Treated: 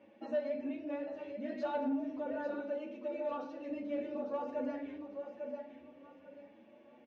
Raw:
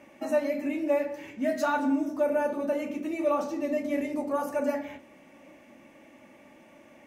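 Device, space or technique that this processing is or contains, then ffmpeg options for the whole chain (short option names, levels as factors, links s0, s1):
barber-pole flanger into a guitar amplifier: -filter_complex "[0:a]asettb=1/sr,asplit=3[s0][s1][s2];[s0]atrim=end=2.594[s3];[s1]atrim=start=2.59:end=3.69,asetpts=PTS-STARTPTS,afade=t=in:d=0.004:c=qsin,afade=t=out:st=1.096:d=0.004:c=qsin,lowshelf=f=420:g=-9.5[s4];[s2]atrim=start=3.686[s5];[s3][s4]acrossfade=d=0.004:c1=hsin:c2=qsin[s6];[s6][s5]acrossfade=d=0.004:c1=qsin:c2=hsin,aecho=1:1:846|1692|2538|3384:0.398|0.123|0.0383|0.0119,asplit=2[s7][s8];[s8]adelay=7,afreqshift=0.78[s9];[s7][s9]amix=inputs=2:normalize=1,asoftclip=type=tanh:threshold=0.0794,highpass=76,equalizer=f=84:t=q:w=4:g=6,equalizer=f=130:t=q:w=4:g=-8,equalizer=f=230:t=q:w=4:g=4,equalizer=f=480:t=q:w=4:g=8,equalizer=f=1200:t=q:w=4:g=-5,equalizer=f=2100:t=q:w=4:g=-7,lowpass=f=4100:w=0.5412,lowpass=f=4100:w=1.3066,volume=0.473"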